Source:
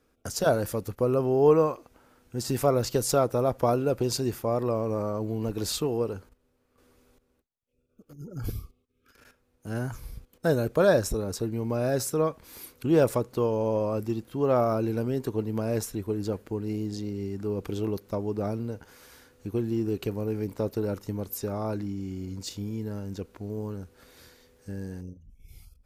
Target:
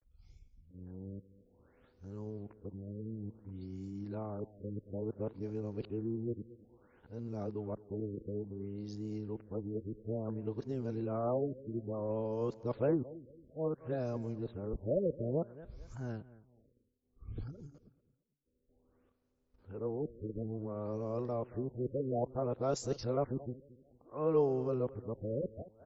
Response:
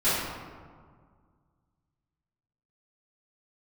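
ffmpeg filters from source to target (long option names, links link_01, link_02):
-filter_complex "[0:a]areverse,equalizer=frequency=2300:width=0.52:gain=-6,asplit=2[link_01][link_02];[link_02]aecho=0:1:224|448|672:0.126|0.0403|0.0129[link_03];[link_01][link_03]amix=inputs=2:normalize=0,afftfilt=real='re*lt(b*sr/1024,560*pow(7700/560,0.5+0.5*sin(2*PI*0.58*pts/sr)))':imag='im*lt(b*sr/1024,560*pow(7700/560,0.5+0.5*sin(2*PI*0.58*pts/sr)))':win_size=1024:overlap=0.75,volume=-9dB"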